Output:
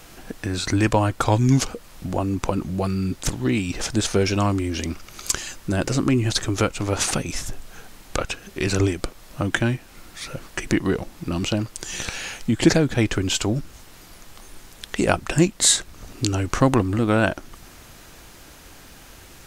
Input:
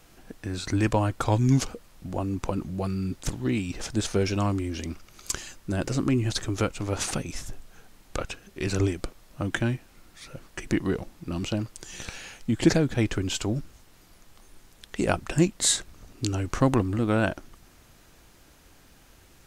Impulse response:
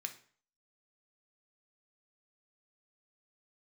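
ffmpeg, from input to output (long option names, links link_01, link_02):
-filter_complex "[0:a]lowshelf=frequency=470:gain=-3,asplit=2[link_01][link_02];[link_02]acompressor=threshold=-39dB:ratio=6,volume=1dB[link_03];[link_01][link_03]amix=inputs=2:normalize=0,volume=5dB"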